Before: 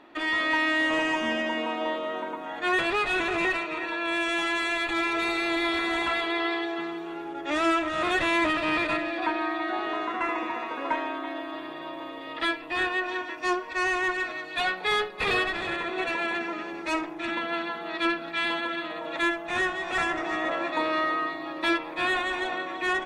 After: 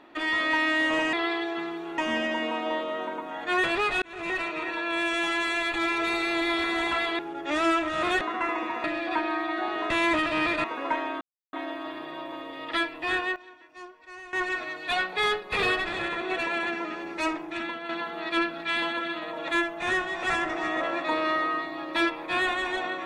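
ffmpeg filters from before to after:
ffmpeg -i in.wav -filter_complex "[0:a]asplit=13[link_01][link_02][link_03][link_04][link_05][link_06][link_07][link_08][link_09][link_10][link_11][link_12][link_13];[link_01]atrim=end=1.132[link_14];[link_02]atrim=start=6.338:end=7.192[link_15];[link_03]atrim=start=1.128:end=3.17,asetpts=PTS-STARTPTS,afade=type=out:start_time=2.038:duration=0.004:curve=hsin[link_16];[link_04]atrim=start=3.17:end=6.342,asetpts=PTS-STARTPTS,afade=type=in:duration=0.48[link_17];[link_05]atrim=start=7.188:end=8.212[link_18];[link_06]atrim=start=10.008:end=10.642[link_19];[link_07]atrim=start=8.948:end=10.012[link_20];[link_08]atrim=start=8.208:end=8.952[link_21];[link_09]atrim=start=10.638:end=11.21,asetpts=PTS-STARTPTS,afade=type=out:start_time=0.568:duration=0.004:curve=hsin,apad=pad_dur=0.32[link_22];[link_10]atrim=start=11.21:end=13.04,asetpts=PTS-STARTPTS,afade=type=in:duration=0.004:curve=hsin,afade=type=out:start_time=1.47:duration=0.36:curve=log:silence=0.133352[link_23];[link_11]atrim=start=13.04:end=14.01,asetpts=PTS-STARTPTS,volume=-17.5dB[link_24];[link_12]atrim=start=14.01:end=17.57,asetpts=PTS-STARTPTS,afade=type=in:duration=0.36:curve=log:silence=0.133352,afade=type=out:start_time=3.15:duration=0.41:silence=0.354813[link_25];[link_13]atrim=start=17.57,asetpts=PTS-STARTPTS,afade=type=in:duration=0.004:curve=hsin:silence=0.354813[link_26];[link_14][link_15]acrossfade=duration=0.004:curve1=hsin:curve2=hsin[link_27];[link_16][link_17]concat=n=2:v=0:a=1[link_28];[link_27][link_28]acrossfade=duration=0.004:curve1=hsin:curve2=hsin[link_29];[link_29][link_18]acrossfade=duration=0.004:curve1=hsin:curve2=hsin[link_30];[link_30][link_19]acrossfade=duration=0.004:curve1=hsin:curve2=hsin[link_31];[link_31][link_20]acrossfade=duration=0.004:curve1=hsin:curve2=hsin[link_32];[link_32][link_21]acrossfade=duration=0.004:curve1=hsin:curve2=hsin[link_33];[link_22][link_23][link_24][link_25][link_26]concat=n=5:v=0:a=1[link_34];[link_33][link_34]acrossfade=duration=0.004:curve1=hsin:curve2=hsin" out.wav

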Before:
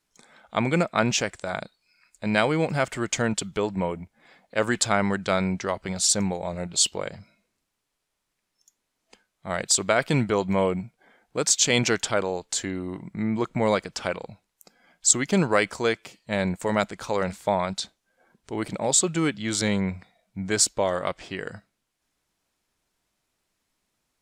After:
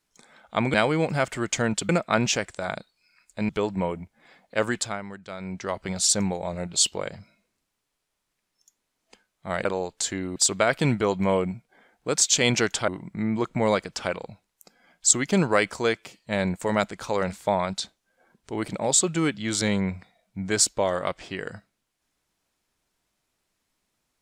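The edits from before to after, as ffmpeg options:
ffmpeg -i in.wav -filter_complex "[0:a]asplit=9[link_01][link_02][link_03][link_04][link_05][link_06][link_07][link_08][link_09];[link_01]atrim=end=0.742[link_10];[link_02]atrim=start=2.338:end=3.492[link_11];[link_03]atrim=start=0.738:end=2.342[link_12];[link_04]atrim=start=3.488:end=5.02,asetpts=PTS-STARTPTS,afade=type=out:start_time=1.092:duration=0.44:silence=0.199526[link_13];[link_05]atrim=start=5.02:end=5.38,asetpts=PTS-STARTPTS,volume=-14dB[link_14];[link_06]atrim=start=5.38:end=9.652,asetpts=PTS-STARTPTS,afade=type=in:duration=0.44:silence=0.199526[link_15];[link_07]atrim=start=12.168:end=12.882[link_16];[link_08]atrim=start=9.648:end=12.172[link_17];[link_09]atrim=start=12.878[link_18];[link_10][link_11]acrossfade=duration=0.004:curve1=hsin:curve2=hsin[link_19];[link_19][link_12]acrossfade=duration=0.004:curve1=hsin:curve2=hsin[link_20];[link_13][link_14][link_15]concat=n=3:v=0:a=1[link_21];[link_20][link_21]acrossfade=duration=0.004:curve1=hsin:curve2=hsin[link_22];[link_22][link_16]acrossfade=duration=0.004:curve1=hsin:curve2=hsin[link_23];[link_23][link_17]acrossfade=duration=0.004:curve1=hsin:curve2=hsin[link_24];[link_24][link_18]acrossfade=duration=0.004:curve1=hsin:curve2=hsin" out.wav

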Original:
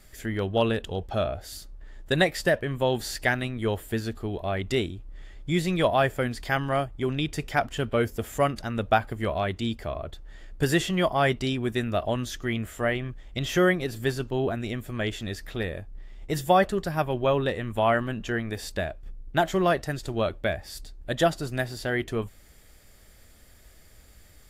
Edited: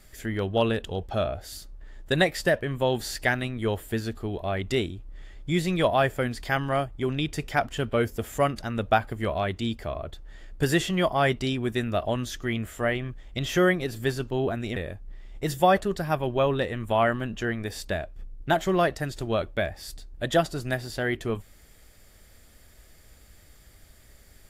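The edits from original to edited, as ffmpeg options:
ffmpeg -i in.wav -filter_complex "[0:a]asplit=2[link_01][link_02];[link_01]atrim=end=14.762[link_03];[link_02]atrim=start=15.628[link_04];[link_03][link_04]acrossfade=duration=0.004:curve1=hsin:curve2=hsin" out.wav

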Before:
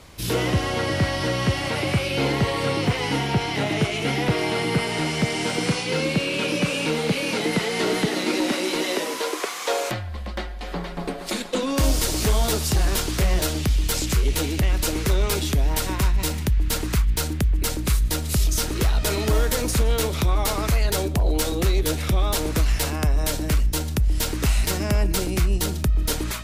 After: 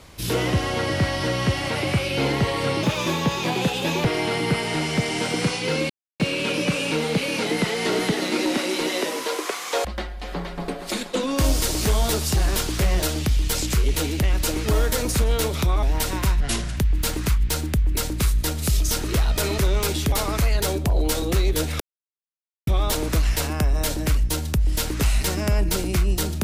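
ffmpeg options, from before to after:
ffmpeg -i in.wav -filter_complex "[0:a]asplit=12[link_01][link_02][link_03][link_04][link_05][link_06][link_07][link_08][link_09][link_10][link_11][link_12];[link_01]atrim=end=2.834[link_13];[link_02]atrim=start=2.83:end=4.29,asetpts=PTS-STARTPTS,asetrate=52920,aresample=44100[link_14];[link_03]atrim=start=4.286:end=6.14,asetpts=PTS-STARTPTS,afade=type=out:start_time=1.85:duration=0.004:curve=hsin,apad=pad_dur=0.3[link_15];[link_04]atrim=start=6.14:end=9.792,asetpts=PTS-STARTPTS,afade=type=in:duration=0.004:curve=hsin[link_16];[link_05]atrim=start=10.238:end=15.052[link_17];[link_06]atrim=start=19.248:end=20.422[link_18];[link_07]atrim=start=15.588:end=16.174[link_19];[link_08]atrim=start=16.17:end=16.44,asetpts=PTS-STARTPTS,asetrate=32634,aresample=44100[link_20];[link_09]atrim=start=16.436:end=19.252[link_21];[link_10]atrim=start=15.048:end=15.592[link_22];[link_11]atrim=start=20.418:end=22.1,asetpts=PTS-STARTPTS,afade=type=out:start_time=1.678:duration=0.004:curve=hsin,apad=pad_dur=0.87[link_23];[link_12]atrim=start=22.1,asetpts=PTS-STARTPTS,afade=type=in:duration=0.004:curve=hsin[link_24];[link_13][link_14]acrossfade=duration=0.004:curve1=hsin:curve2=hsin[link_25];[link_15][link_16]concat=n=2:v=0:a=1[link_26];[link_25][link_26]acrossfade=duration=0.004:curve1=hsin:curve2=hsin[link_27];[link_27][link_17]acrossfade=duration=0.004:curve1=hsin:curve2=hsin[link_28];[link_28][link_18]acrossfade=duration=0.004:curve1=hsin:curve2=hsin[link_29];[link_29][link_19]acrossfade=duration=0.004:curve1=hsin:curve2=hsin[link_30];[link_30][link_20]acrossfade=duration=0.004:curve1=hsin:curve2=hsin[link_31];[link_31][link_21]acrossfade=duration=0.004:curve1=hsin:curve2=hsin[link_32];[link_32][link_22]acrossfade=duration=0.004:curve1=hsin:curve2=hsin[link_33];[link_23][link_24]concat=n=2:v=0:a=1[link_34];[link_33][link_34]acrossfade=duration=0.004:curve1=hsin:curve2=hsin" out.wav

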